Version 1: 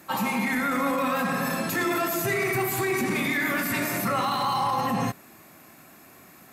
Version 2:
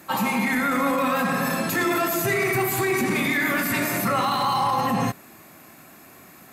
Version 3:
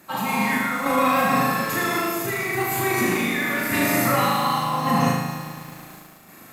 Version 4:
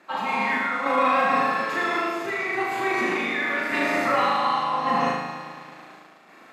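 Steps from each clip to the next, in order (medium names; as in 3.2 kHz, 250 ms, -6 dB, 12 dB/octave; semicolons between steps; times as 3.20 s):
band-stop 5.5 kHz, Q 26; trim +3 dB
random-step tremolo; flutter echo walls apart 6.6 m, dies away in 0.86 s; bit-crushed delay 109 ms, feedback 80%, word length 7-bit, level -11.5 dB
band-pass 350–3500 Hz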